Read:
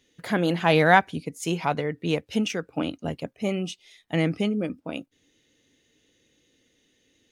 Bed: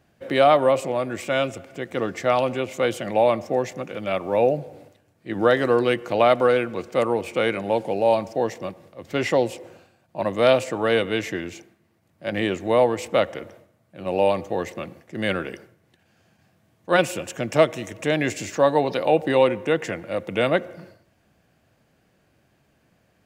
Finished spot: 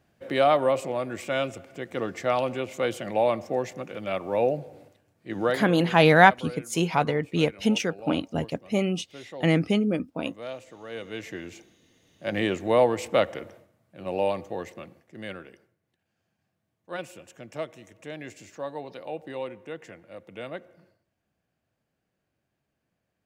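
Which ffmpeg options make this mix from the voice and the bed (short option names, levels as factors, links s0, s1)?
-filter_complex "[0:a]adelay=5300,volume=1.26[s0];[1:a]volume=4.73,afade=t=out:st=5.38:d=0.36:silence=0.16788,afade=t=in:st=10.87:d=1.19:silence=0.125893,afade=t=out:st=13.21:d=2.32:silence=0.188365[s1];[s0][s1]amix=inputs=2:normalize=0"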